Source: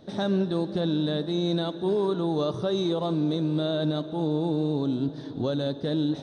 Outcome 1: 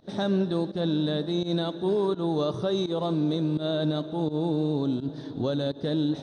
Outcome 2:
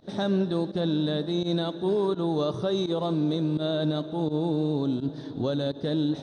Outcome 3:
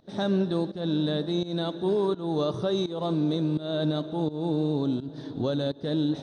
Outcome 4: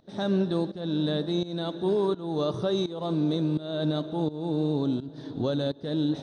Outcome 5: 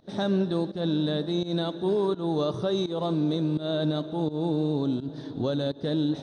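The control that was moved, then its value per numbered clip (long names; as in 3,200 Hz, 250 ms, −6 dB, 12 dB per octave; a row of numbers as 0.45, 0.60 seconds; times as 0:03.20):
fake sidechain pumping, release: 123, 79, 281, 418, 188 milliseconds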